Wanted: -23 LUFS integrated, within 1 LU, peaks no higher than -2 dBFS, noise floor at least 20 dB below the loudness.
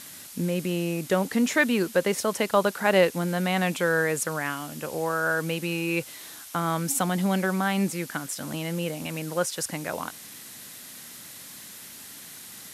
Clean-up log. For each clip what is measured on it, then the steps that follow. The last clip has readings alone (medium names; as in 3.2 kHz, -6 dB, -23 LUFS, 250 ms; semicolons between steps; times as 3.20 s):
noise floor -44 dBFS; noise floor target -47 dBFS; loudness -26.5 LUFS; peak level -8.5 dBFS; loudness target -23.0 LUFS
-> noise reduction 6 dB, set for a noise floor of -44 dBFS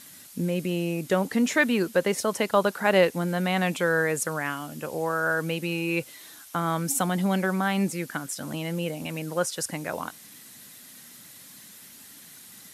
noise floor -48 dBFS; loudness -26.5 LUFS; peak level -8.5 dBFS; loudness target -23.0 LUFS
-> trim +3.5 dB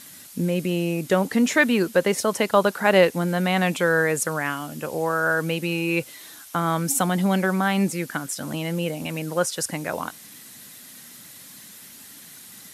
loudness -23.0 LUFS; peak level -5.0 dBFS; noise floor -45 dBFS